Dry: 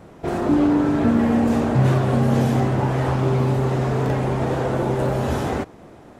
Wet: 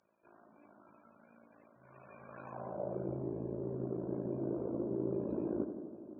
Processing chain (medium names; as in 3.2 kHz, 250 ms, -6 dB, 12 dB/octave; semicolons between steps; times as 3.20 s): rippled EQ curve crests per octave 1.3, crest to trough 8 dB; reverse; compression 6:1, threshold -25 dBFS, peak gain reduction 13.5 dB; reverse; formant shift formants -4 st; AM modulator 55 Hz, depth 75%; on a send: tape echo 85 ms, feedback 79%, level -7 dB, low-pass 1.6 kHz; on the sum: loudest bins only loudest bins 64; band-pass sweep 5.6 kHz -> 330 Hz, 1.75–3.08 s; trim +1 dB